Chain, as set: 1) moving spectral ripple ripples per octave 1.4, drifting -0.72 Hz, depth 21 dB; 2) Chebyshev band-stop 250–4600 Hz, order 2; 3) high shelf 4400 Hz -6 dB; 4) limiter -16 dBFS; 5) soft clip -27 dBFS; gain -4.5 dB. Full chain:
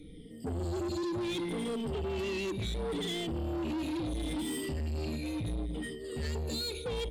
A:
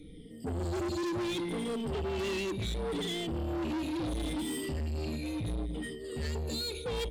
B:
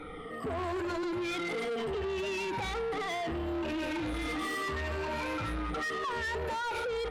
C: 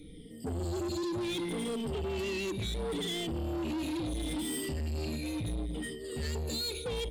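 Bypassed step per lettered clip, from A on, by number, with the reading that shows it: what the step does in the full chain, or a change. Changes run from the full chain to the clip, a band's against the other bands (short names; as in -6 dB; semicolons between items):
4, mean gain reduction 1.5 dB; 2, 1 kHz band +12.0 dB; 3, 8 kHz band +4.0 dB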